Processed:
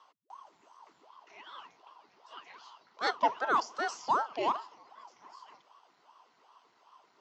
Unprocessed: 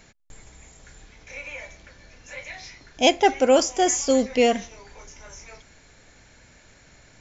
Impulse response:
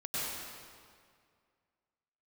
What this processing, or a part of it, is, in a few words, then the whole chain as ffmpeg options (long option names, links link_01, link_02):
voice changer toy: -af "aeval=exprs='val(0)*sin(2*PI*610*n/s+610*0.85/2.6*sin(2*PI*2.6*n/s))':channel_layout=same,highpass=480,equalizer=frequency=540:width_type=q:width=4:gain=-7,equalizer=frequency=1000:width_type=q:width=4:gain=9,equalizer=frequency=1700:width_type=q:width=4:gain=-8,equalizer=frequency=2400:width_type=q:width=4:gain=-9,equalizer=frequency=3700:width_type=q:width=4:gain=-5,lowpass=frequency=4600:width=0.5412,lowpass=frequency=4600:width=1.3066,volume=-6.5dB"